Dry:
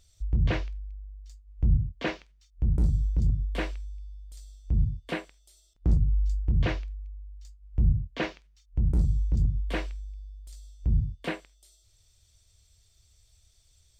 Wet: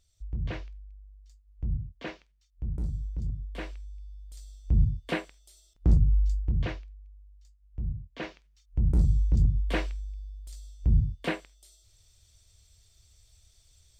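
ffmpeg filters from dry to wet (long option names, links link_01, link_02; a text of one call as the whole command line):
ffmpeg -i in.wav -af "volume=14dB,afade=type=in:start_time=3.54:duration=1.18:silence=0.316228,afade=type=out:start_time=6.16:duration=0.68:silence=0.251189,afade=type=in:start_time=8.07:duration=1.04:silence=0.251189" out.wav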